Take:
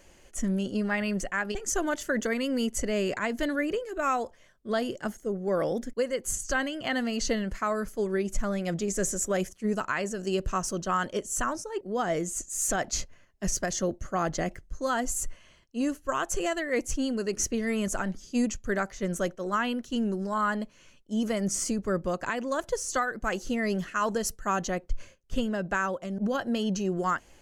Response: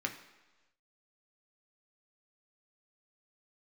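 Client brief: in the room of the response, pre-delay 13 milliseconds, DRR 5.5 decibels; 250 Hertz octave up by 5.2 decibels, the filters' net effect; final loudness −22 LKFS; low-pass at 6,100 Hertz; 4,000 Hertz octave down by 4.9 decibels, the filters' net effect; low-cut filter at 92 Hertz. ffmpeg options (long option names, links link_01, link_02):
-filter_complex "[0:a]highpass=92,lowpass=6100,equalizer=frequency=250:width_type=o:gain=6.5,equalizer=frequency=4000:width_type=o:gain=-6.5,asplit=2[link_01][link_02];[1:a]atrim=start_sample=2205,adelay=13[link_03];[link_02][link_03]afir=irnorm=-1:irlink=0,volume=-9dB[link_04];[link_01][link_04]amix=inputs=2:normalize=0,volume=4.5dB"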